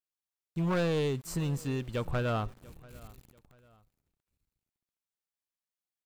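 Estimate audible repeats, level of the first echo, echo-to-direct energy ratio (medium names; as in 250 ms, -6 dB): 2, -22.5 dB, -22.0 dB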